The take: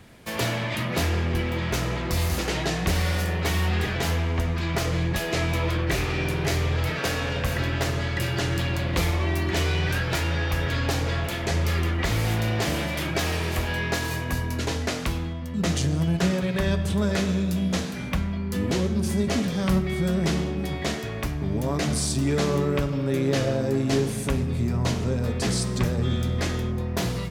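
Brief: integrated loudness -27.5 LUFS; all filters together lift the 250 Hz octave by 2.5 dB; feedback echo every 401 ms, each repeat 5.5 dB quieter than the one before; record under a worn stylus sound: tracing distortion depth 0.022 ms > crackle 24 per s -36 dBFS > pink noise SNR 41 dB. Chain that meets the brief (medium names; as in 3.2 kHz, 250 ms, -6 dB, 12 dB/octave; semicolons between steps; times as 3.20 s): peaking EQ 250 Hz +3.5 dB; feedback delay 401 ms, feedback 53%, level -5.5 dB; tracing distortion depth 0.022 ms; crackle 24 per s -36 dBFS; pink noise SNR 41 dB; trim -4.5 dB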